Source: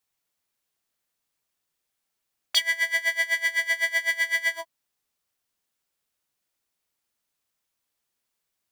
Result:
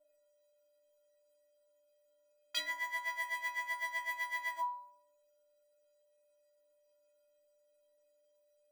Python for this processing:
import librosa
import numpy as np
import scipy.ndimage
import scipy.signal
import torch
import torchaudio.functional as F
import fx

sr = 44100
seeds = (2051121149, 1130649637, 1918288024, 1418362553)

y = fx.fold_sine(x, sr, drive_db=4, ceiling_db=-7.0)
y = y + 10.0 ** (-53.0 / 20.0) * np.sin(2.0 * np.pi * 590.0 * np.arange(len(y)) / sr)
y = fx.stiff_resonator(y, sr, f0_hz=290.0, decay_s=0.77, stiffness=0.03)
y = y * librosa.db_to_amplitude(5.5)